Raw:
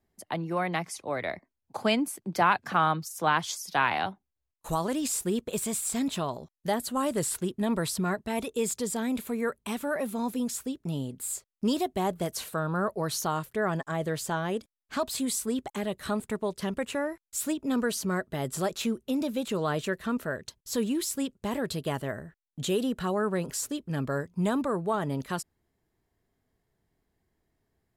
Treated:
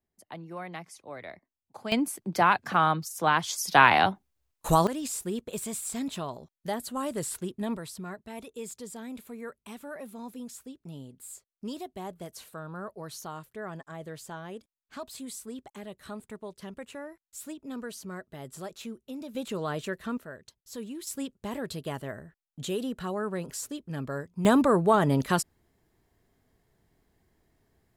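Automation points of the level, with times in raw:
−10 dB
from 0:01.92 +1 dB
from 0:03.58 +7.5 dB
from 0:04.87 −4 dB
from 0:07.77 −10.5 dB
from 0:19.35 −3.5 dB
from 0:20.18 −10.5 dB
from 0:21.07 −4 dB
from 0:24.45 +7 dB

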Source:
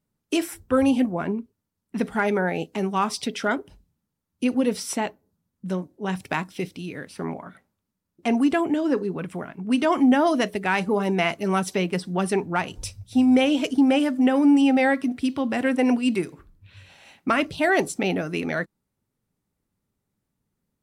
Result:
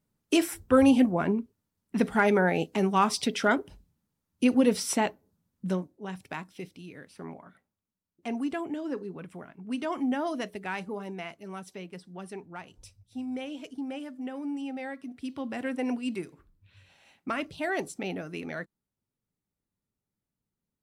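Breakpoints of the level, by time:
0:05.66 0 dB
0:06.11 −11 dB
0:10.70 −11 dB
0:11.35 −17.5 dB
0:14.96 −17.5 dB
0:15.40 −10 dB

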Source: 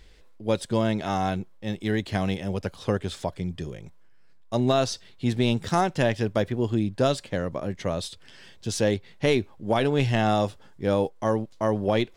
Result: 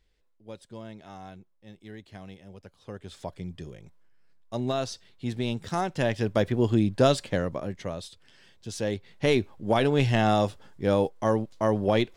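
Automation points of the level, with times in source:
0:02.80 −18 dB
0:03.29 −6.5 dB
0:05.69 −6.5 dB
0:06.57 +2 dB
0:07.30 +2 dB
0:08.04 −8 dB
0:08.71 −8 dB
0:09.38 0 dB

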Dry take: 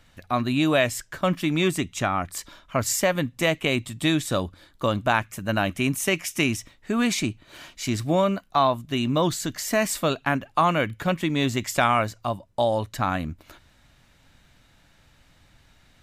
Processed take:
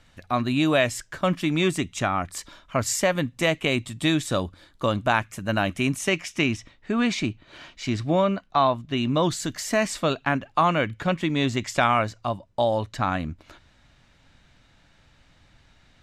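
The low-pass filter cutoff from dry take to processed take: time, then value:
0:05.82 10,000 Hz
0:06.41 4,700 Hz
0:08.95 4,700 Hz
0:09.50 12,000 Hz
0:09.88 6,700 Hz

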